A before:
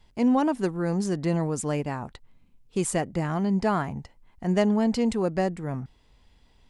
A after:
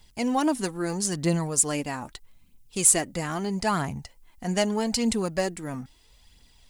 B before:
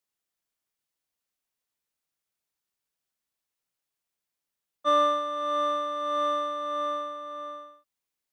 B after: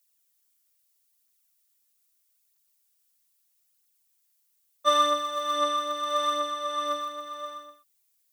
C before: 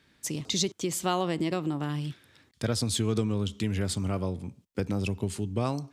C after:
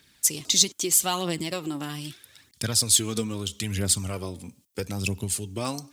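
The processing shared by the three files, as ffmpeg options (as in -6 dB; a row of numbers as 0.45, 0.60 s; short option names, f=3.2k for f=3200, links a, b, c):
-af "aphaser=in_gain=1:out_gain=1:delay=4.3:decay=0.43:speed=0.78:type=triangular,crystalizer=i=5:c=0,volume=-3dB"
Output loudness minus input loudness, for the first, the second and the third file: +1.0, +0.5, +5.5 LU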